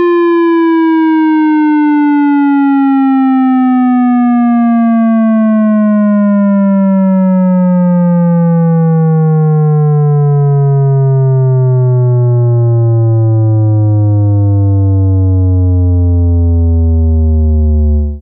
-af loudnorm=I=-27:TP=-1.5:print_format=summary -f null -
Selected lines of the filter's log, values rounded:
Input Integrated:     -9.4 LUFS
Input True Peak:      -7.2 dBTP
Input LRA:             1.7 LU
Input Threshold:     -19.4 LUFS